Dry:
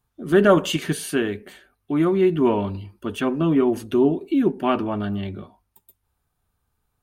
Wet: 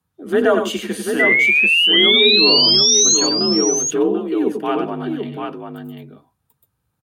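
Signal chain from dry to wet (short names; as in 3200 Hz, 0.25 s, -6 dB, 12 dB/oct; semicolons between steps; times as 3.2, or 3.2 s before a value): painted sound rise, 1.19–3.17, 1900–6700 Hz -14 dBFS; frequency shift +47 Hz; tapped delay 85/90/99/739 ms -19/-11/-8.5/-5.5 dB; gain -1 dB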